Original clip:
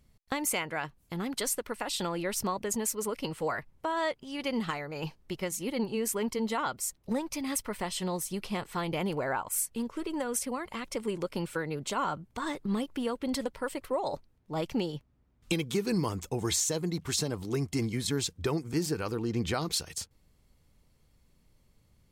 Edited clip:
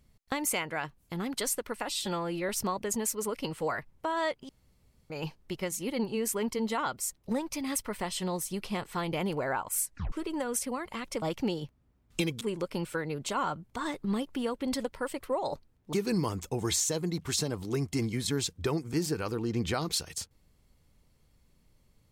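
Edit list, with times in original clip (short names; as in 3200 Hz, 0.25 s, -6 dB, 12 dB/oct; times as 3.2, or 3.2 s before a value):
1.89–2.29 stretch 1.5×
4.29–4.9 room tone
9.66 tape stop 0.26 s
14.54–15.73 move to 11.02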